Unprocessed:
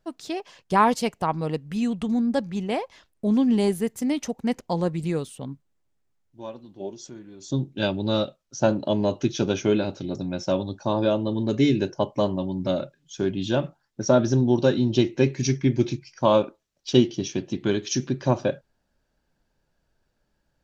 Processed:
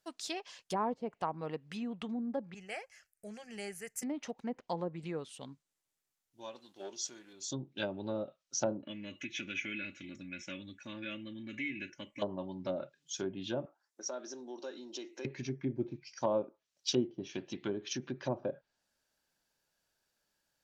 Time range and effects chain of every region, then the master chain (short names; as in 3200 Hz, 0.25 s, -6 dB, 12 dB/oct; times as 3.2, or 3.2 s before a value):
2.54–4.03 bell 520 Hz -7.5 dB 1.5 oct + fixed phaser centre 1000 Hz, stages 6
6.55–7.33 low shelf 220 Hz -11.5 dB + sample leveller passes 1
8.82–12.22 EQ curve 190 Hz 0 dB, 320 Hz -5 dB, 820 Hz -25 dB, 2200 Hz +13 dB, 4700 Hz -20 dB, 7700 Hz -5 dB + compressor 2.5:1, threshold -29 dBFS + comb 3.5 ms, depth 56%
13.65–15.25 HPF 280 Hz 24 dB/oct + bell 3400 Hz -9 dB 1.5 oct + compressor 2:1, threshold -38 dBFS
whole clip: treble ducked by the level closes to 600 Hz, closed at -19 dBFS; tilt +3.5 dB/oct; gain -7 dB